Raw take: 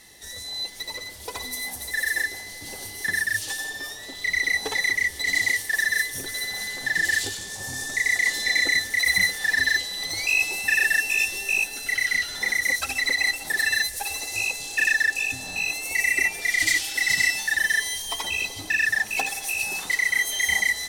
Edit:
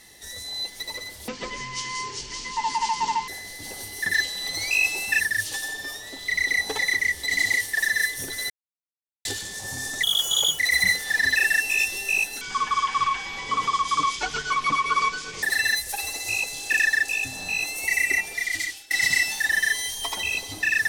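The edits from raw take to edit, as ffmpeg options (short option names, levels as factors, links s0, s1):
-filter_complex "[0:a]asplit=13[s0][s1][s2][s3][s4][s5][s6][s7][s8][s9][s10][s11][s12];[s0]atrim=end=1.284[s13];[s1]atrim=start=1.28:end=2.3,asetpts=PTS-STARTPTS,asetrate=22491,aresample=44100[s14];[s2]atrim=start=2.296:end=3.162[s15];[s3]atrim=start=9.698:end=10.762[s16];[s4]atrim=start=3.158:end=6.46,asetpts=PTS-STARTPTS,afade=t=out:st=3.298:d=0.004:c=hsin[s17];[s5]atrim=start=6.46:end=7.21,asetpts=PTS-STARTPTS,volume=0[s18];[s6]atrim=start=7.21:end=7.994,asetpts=PTS-STARTPTS,afade=t=in:d=0.004:c=hsin[s19];[s7]atrim=start=7.99:end=8.93,asetpts=PTS-STARTPTS,asetrate=74088,aresample=44100[s20];[s8]atrim=start=8.926:end=9.702[s21];[s9]atrim=start=10.758:end=11.814[s22];[s10]atrim=start=11.81:end=13.5,asetpts=PTS-STARTPTS,asetrate=24696,aresample=44100[s23];[s11]atrim=start=13.496:end=16.98,asetpts=PTS-STARTPTS,afade=t=out:st=2.374:d=1.11:c=qsin:silence=0.0749894[s24];[s12]atrim=start=16.98,asetpts=PTS-STARTPTS,afade=t=in:d=0.004:c=hsin:silence=0.0749894[s25];[s13][s14]acrossfade=d=0.004:c1=hsin:c2=hsin[s26];[s26][s15]acrossfade=d=0.004:c1=hsin:c2=hsin[s27];[s27][s16]acrossfade=d=0.004:c1=hsin:c2=hsin[s28];[s17][s18][s19]concat=n=3:v=0:a=1[s29];[s28][s29]acrossfade=d=0.004:c1=hsin:c2=hsin[s30];[s30][s20]acrossfade=d=0.004:c1=hsin:c2=hsin[s31];[s31][s21]acrossfade=d=0.004:c1=hsin:c2=hsin[s32];[s32][s22]acrossfade=d=0.004:c1=hsin:c2=hsin[s33];[s33][s23]acrossfade=d=0.004:c1=hsin:c2=hsin[s34];[s24][s25]concat=n=2:v=0:a=1[s35];[s34][s35]acrossfade=d=0.004:c1=hsin:c2=hsin"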